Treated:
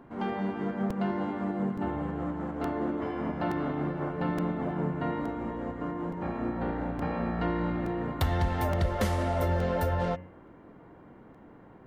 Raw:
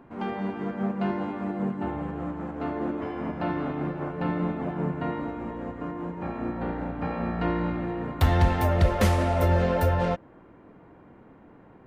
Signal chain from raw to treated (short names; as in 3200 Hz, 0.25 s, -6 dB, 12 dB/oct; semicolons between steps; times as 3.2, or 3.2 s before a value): notch 2500 Hz, Q 13; de-hum 90.21 Hz, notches 34; compressor 2.5:1, threshold -26 dBFS, peak gain reduction 7.5 dB; crackling interface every 0.87 s, samples 128, repeat, from 0.9